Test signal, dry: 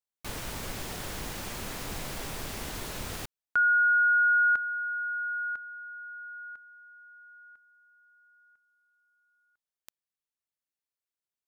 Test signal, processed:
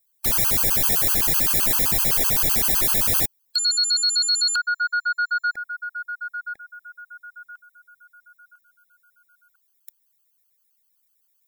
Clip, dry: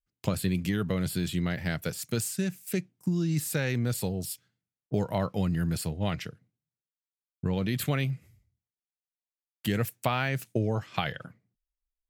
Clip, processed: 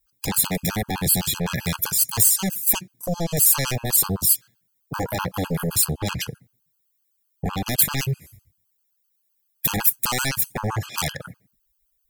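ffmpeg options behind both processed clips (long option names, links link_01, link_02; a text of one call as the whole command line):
ffmpeg -i in.wav -af "aeval=exprs='0.299*sin(PI/2*7.08*val(0)/0.299)':channel_layout=same,aemphasis=mode=production:type=50fm,afftfilt=real='re*gt(sin(2*PI*7.8*pts/sr)*(1-2*mod(floor(b*sr/1024/830),2)),0)':imag='im*gt(sin(2*PI*7.8*pts/sr)*(1-2*mod(floor(b*sr/1024/830),2)),0)':win_size=1024:overlap=0.75,volume=-8dB" out.wav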